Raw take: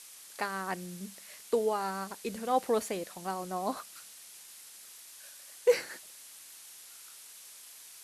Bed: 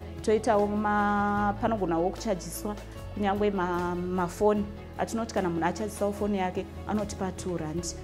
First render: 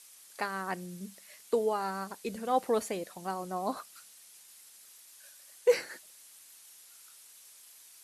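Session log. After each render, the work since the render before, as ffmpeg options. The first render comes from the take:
-af "afftdn=nr=6:nf=-51"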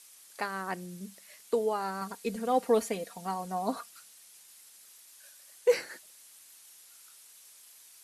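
-filter_complex "[0:a]asettb=1/sr,asplit=3[s0][s1][s2];[s0]atrim=end=2.014[s3];[s1]atrim=start=2.01:end=3.9,asetpts=PTS-STARTPTS,afade=t=in:d=0.004:c=qsin,afade=t=out:st=1.886:d=0.004:c=qsin,aecho=1:1:4.3:0.65,atrim=end_sample=83349[s4];[s2]atrim=start=3.896[s5];[s3][s4]acrossfade=d=0.004:c1=hsin:c2=qsin[s6];[s6][s5]acrossfade=d=0.004:c1=qsin:c2=hsin"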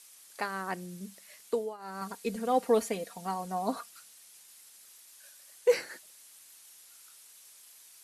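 -filter_complex "[0:a]asplit=3[s0][s1][s2];[s0]atrim=end=1.77,asetpts=PTS-STARTPTS,afade=t=out:st=1.48:d=0.29:silence=0.141254[s3];[s1]atrim=start=1.77:end=1.78,asetpts=PTS-STARTPTS,volume=0.141[s4];[s2]atrim=start=1.78,asetpts=PTS-STARTPTS,afade=t=in:d=0.29:silence=0.141254[s5];[s3][s4][s5]concat=n=3:v=0:a=1"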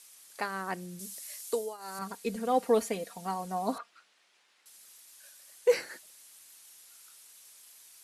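-filter_complex "[0:a]asettb=1/sr,asplit=3[s0][s1][s2];[s0]atrim=end=0.994[s3];[s1]atrim=start=0.99:end=1.99,asetpts=PTS-STARTPTS,afade=t=in:d=0.004:c=qsin,afade=t=out:st=0.996:d=0.004:c=qsin,bass=f=250:g=-8,treble=f=4000:g=12[s4];[s2]atrim=start=1.986[s5];[s3][s4]acrossfade=d=0.004:c1=hsin:c2=qsin[s6];[s6][s5]acrossfade=d=0.004:c1=qsin:c2=hsin,asettb=1/sr,asplit=3[s7][s8][s9];[s7]atrim=end=3.784[s10];[s8]atrim=start=3.78:end=4.66,asetpts=PTS-STARTPTS,afade=t=in:d=0.004:c=qsin,afade=t=out:st=0.876:d=0.004:c=qsin,highpass=280,lowpass=2800[s11];[s9]atrim=start=4.656[s12];[s10][s11]acrossfade=d=0.004:c1=hsin:c2=qsin[s13];[s13][s12]acrossfade=d=0.004:c1=qsin:c2=hsin"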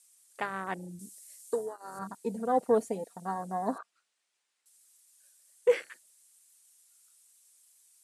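-af "afwtdn=0.0141,equalizer=f=8500:t=o:w=0.91:g=12"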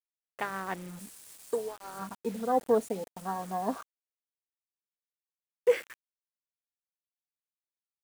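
-af "acrusher=bits=7:mix=0:aa=0.000001"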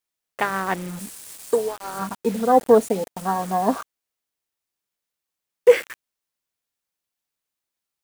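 -af "volume=3.55"

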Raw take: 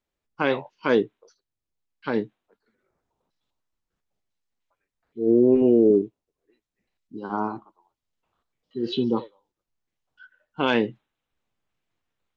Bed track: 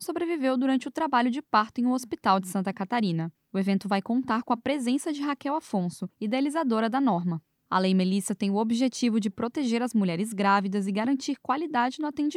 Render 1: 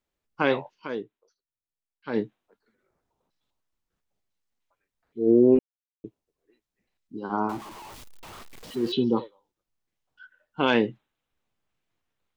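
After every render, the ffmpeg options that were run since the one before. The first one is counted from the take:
-filter_complex "[0:a]asettb=1/sr,asplit=3[s0][s1][s2];[s0]atrim=end=7.494[s3];[s1]atrim=start=7.49:end=8.92,asetpts=PTS-STARTPTS,afade=t=in:d=0.004:c=qsin,afade=t=out:st=1.426:d=0.004:c=qsin,aeval=exprs='val(0)+0.5*0.0133*sgn(val(0))':c=same[s4];[s2]atrim=start=8.916[s5];[s3][s4]acrossfade=d=0.004:c1=hsin:c2=qsin[s6];[s6][s5]acrossfade=d=0.004:c1=qsin:c2=hsin,asplit=5[s7][s8][s9][s10][s11];[s7]atrim=end=0.88,asetpts=PTS-STARTPTS,afade=t=out:st=0.73:d=0.15:silence=0.237137[s12];[s8]atrim=start=0.88:end=2.05,asetpts=PTS-STARTPTS,volume=0.237[s13];[s9]atrim=start=2.05:end=5.59,asetpts=PTS-STARTPTS,afade=t=in:d=0.15:silence=0.237137,afade=t=out:st=3.536:d=0.004:c=hsin[s14];[s10]atrim=start=5.59:end=6.04,asetpts=PTS-STARTPTS,volume=0[s15];[s11]atrim=start=6.04,asetpts=PTS-STARTPTS,afade=t=in:d=0.004:c=hsin[s16];[s12][s13][s14][s15][s16]concat=n=5:v=0:a=1"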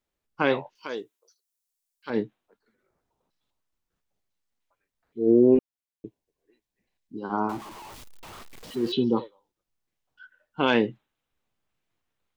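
-filter_complex "[0:a]asettb=1/sr,asplit=3[s0][s1][s2];[s0]atrim=end=0.754[s3];[s1]atrim=start=0.75:end=2.1,asetpts=PTS-STARTPTS,afade=t=in:d=0.004:c=qsin,afade=t=out:st=1.346:d=0.004:c=qsin,bass=f=250:g=-11,treble=f=4000:g=14[s4];[s2]atrim=start=2.096[s5];[s3][s4]acrossfade=d=0.004:c1=hsin:c2=qsin[s6];[s6][s5]acrossfade=d=0.004:c1=qsin:c2=hsin,asettb=1/sr,asplit=3[s7][s8][s9];[s7]atrim=end=5.554[s10];[s8]atrim=start=5.55:end=7.21,asetpts=PTS-STARTPTS,afade=t=in:d=0.004:c=qsin,afade=t=out:st=1.656:d=0.004:c=qsin,asuperstop=centerf=1300:order=4:qfactor=6.1[s11];[s9]atrim=start=7.206[s12];[s10][s11]acrossfade=d=0.004:c1=hsin:c2=qsin[s13];[s13][s12]acrossfade=d=0.004:c1=qsin:c2=hsin"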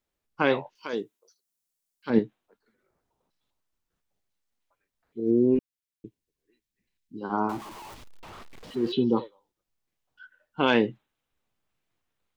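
-filter_complex "[0:a]asettb=1/sr,asplit=3[s0][s1][s2];[s0]atrim=end=0.934[s3];[s1]atrim=start=0.93:end=2.19,asetpts=PTS-STARTPTS,afade=t=in:d=0.004:c=qsin,afade=t=out:st=1.256:d=0.004:c=qsin,equalizer=f=180:w=0.73:g=9.5[s4];[s2]atrim=start=2.186[s5];[s3][s4]acrossfade=d=0.004:c1=hsin:c2=qsin[s6];[s6][s5]acrossfade=d=0.004:c1=qsin:c2=hsin,asettb=1/sr,asplit=3[s7][s8][s9];[s7]atrim=end=5.204[s10];[s8]atrim=start=5.2:end=7.21,asetpts=PTS-STARTPTS,afade=t=in:d=0.004:c=qsin,afade=t=out:st=2.006:d=0.004:c=qsin,equalizer=f=700:w=1:g=-13[s11];[s9]atrim=start=7.206[s12];[s10][s11]acrossfade=d=0.004:c1=hsin:c2=qsin[s13];[s13][s12]acrossfade=d=0.004:c1=qsin:c2=hsin,asettb=1/sr,asplit=3[s14][s15][s16];[s14]atrim=end=7.944[s17];[s15]atrim=start=7.94:end=9.09,asetpts=PTS-STARTPTS,afade=t=in:d=0.004:c=qsin,afade=t=out:st=1.146:d=0.004:c=qsin,lowpass=f=3300:p=1[s18];[s16]atrim=start=9.086[s19];[s17][s18]acrossfade=d=0.004:c1=hsin:c2=qsin[s20];[s20][s19]acrossfade=d=0.004:c1=qsin:c2=hsin"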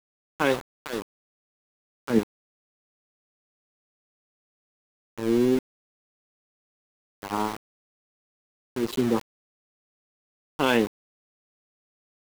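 -af "aeval=exprs='val(0)*gte(abs(val(0)),0.0376)':c=same"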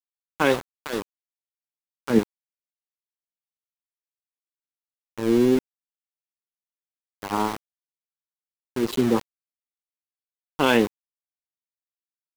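-af "volume=1.41"

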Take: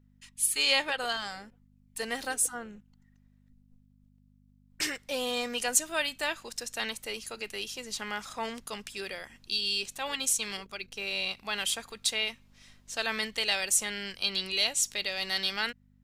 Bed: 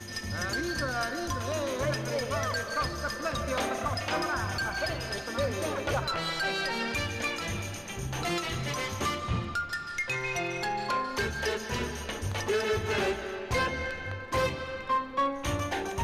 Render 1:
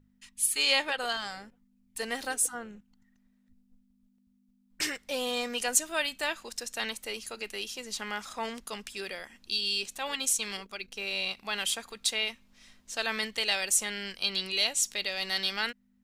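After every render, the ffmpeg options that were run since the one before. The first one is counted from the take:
-af "bandreject=f=50:t=h:w=4,bandreject=f=100:t=h:w=4,bandreject=f=150:t=h:w=4"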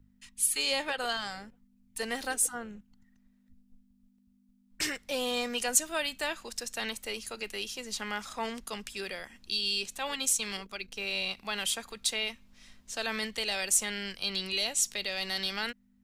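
-filter_complex "[0:a]acrossover=split=170|780|5200[s0][s1][s2][s3];[s0]acontrast=30[s4];[s2]alimiter=limit=0.0708:level=0:latency=1[s5];[s4][s1][s5][s3]amix=inputs=4:normalize=0"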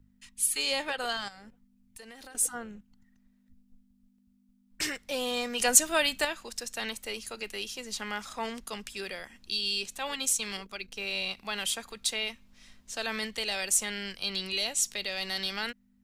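-filter_complex "[0:a]asettb=1/sr,asplit=3[s0][s1][s2];[s0]atrim=end=1.284[s3];[s1]atrim=start=1.28:end=2.35,asetpts=PTS-STARTPTS,afade=t=in:d=0.004:c=qsin,afade=t=out:st=1.066:d=0.004:c=qsin,acompressor=threshold=0.00631:ratio=10:attack=3.2:release=140:knee=1:detection=peak[s4];[s2]atrim=start=2.346[s5];[s3][s4]acrossfade=d=0.004:c1=hsin:c2=qsin[s6];[s6][s5]acrossfade=d=0.004:c1=qsin:c2=hsin,asettb=1/sr,asplit=3[s7][s8][s9];[s7]atrim=end=5.594[s10];[s8]atrim=start=5.59:end=6.25,asetpts=PTS-STARTPTS,afade=t=in:d=0.004:c=qsin,afade=t=out:st=0.656:d=0.004:c=qsin,acontrast=49[s11];[s9]atrim=start=6.246[s12];[s10][s11]acrossfade=d=0.004:c1=hsin:c2=qsin[s13];[s13][s12]acrossfade=d=0.004:c1=qsin:c2=hsin"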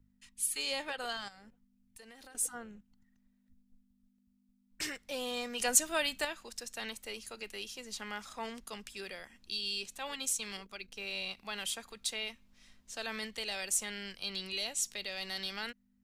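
-af "volume=0.501"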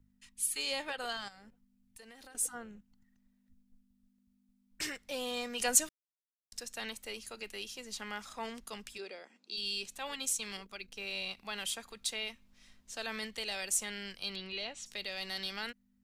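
-filter_complex "[0:a]asplit=3[s0][s1][s2];[s0]afade=t=out:st=8.97:d=0.02[s3];[s1]highpass=f=240:w=0.5412,highpass=f=240:w=1.3066,equalizer=f=440:t=q:w=4:g=3,equalizer=f=1100:t=q:w=4:g=-4,equalizer=f=1800:t=q:w=4:g=-9,equalizer=f=3100:t=q:w=4:g=-8,equalizer=f=5700:t=q:w=4:g=-6,lowpass=f=6900:w=0.5412,lowpass=f=6900:w=1.3066,afade=t=in:st=8.97:d=0.02,afade=t=out:st=9.56:d=0.02[s4];[s2]afade=t=in:st=9.56:d=0.02[s5];[s3][s4][s5]amix=inputs=3:normalize=0,asplit=3[s6][s7][s8];[s6]afade=t=out:st=14.35:d=0.02[s9];[s7]lowpass=3400,afade=t=in:st=14.35:d=0.02,afade=t=out:st=14.85:d=0.02[s10];[s8]afade=t=in:st=14.85:d=0.02[s11];[s9][s10][s11]amix=inputs=3:normalize=0,asplit=3[s12][s13][s14];[s12]atrim=end=5.89,asetpts=PTS-STARTPTS,afade=t=out:st=5.886:d=0.004:c=hsin[s15];[s13]atrim=start=5.89:end=6.52,asetpts=PTS-STARTPTS,volume=0[s16];[s14]atrim=start=6.52,asetpts=PTS-STARTPTS,afade=t=in:d=0.004:c=hsin[s17];[s15][s16][s17]concat=n=3:v=0:a=1"

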